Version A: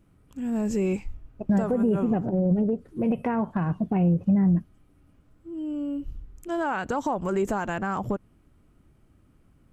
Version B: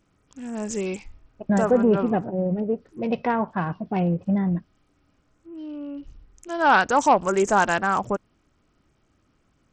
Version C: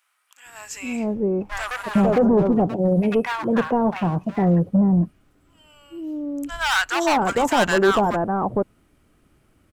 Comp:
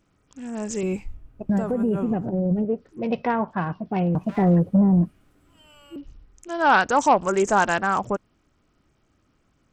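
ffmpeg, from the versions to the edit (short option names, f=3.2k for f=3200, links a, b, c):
-filter_complex "[1:a]asplit=3[a][b][c];[a]atrim=end=0.832[d];[0:a]atrim=start=0.828:end=2.652[e];[b]atrim=start=2.648:end=4.152[f];[2:a]atrim=start=4.148:end=5.962[g];[c]atrim=start=5.958[h];[d][e]acrossfade=d=0.004:c1=hsin:c2=hsin[i];[i][f]acrossfade=d=0.004:c1=hsin:c2=hsin[j];[j][g]acrossfade=d=0.004:c1=hsin:c2=hsin[k];[k][h]acrossfade=d=0.004:c1=hsin:c2=hsin"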